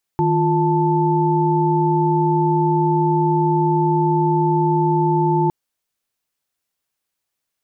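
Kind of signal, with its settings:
held notes D#3/F4/A5 sine, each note −18.5 dBFS 5.31 s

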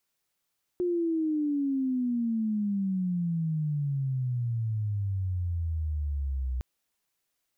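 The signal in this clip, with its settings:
glide logarithmic 360 Hz → 62 Hz −24.5 dBFS → −27.5 dBFS 5.81 s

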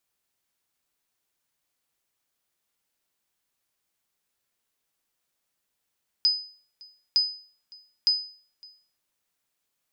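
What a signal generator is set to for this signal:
ping with an echo 5,000 Hz, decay 0.45 s, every 0.91 s, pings 3, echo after 0.56 s, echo −26 dB −14.5 dBFS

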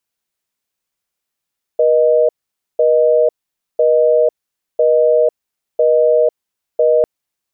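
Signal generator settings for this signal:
call progress tone busy tone, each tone −11.5 dBFS 5.25 s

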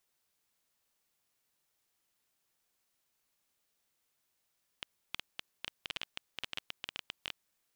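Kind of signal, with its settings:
Geiger counter clicks 12 per second −20 dBFS 2.49 s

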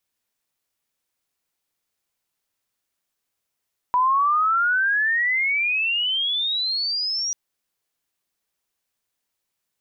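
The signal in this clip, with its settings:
glide logarithmic 980 Hz → 5,800 Hz −15.5 dBFS → −22.5 dBFS 3.39 s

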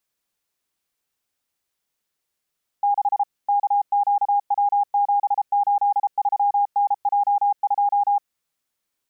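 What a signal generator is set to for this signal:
Morse code "6 KQW783NJ2" 33 words per minute 813 Hz −15.5 dBFS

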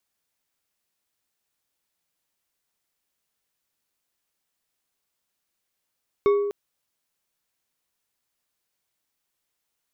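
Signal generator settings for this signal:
struck glass bar, length 0.25 s, lowest mode 407 Hz, decay 1.23 s, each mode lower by 10 dB, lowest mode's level −14 dB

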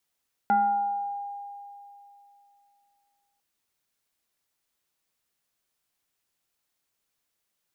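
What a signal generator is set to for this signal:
two-operator FM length 2.90 s, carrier 808 Hz, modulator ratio 0.74, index 0.59, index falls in 1.24 s exponential, decay 2.93 s, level −17.5 dB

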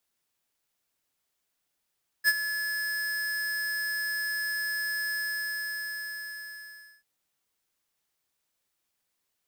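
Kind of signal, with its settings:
note with an ADSR envelope square 1,710 Hz, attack 42 ms, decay 43 ms, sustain −11.5 dB, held 2.89 s, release 1,900 ms −19.5 dBFS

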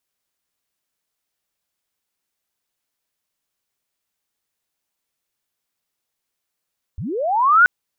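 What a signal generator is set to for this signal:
glide linear 62 Hz → 1,500 Hz −25.5 dBFS → −7 dBFS 0.68 s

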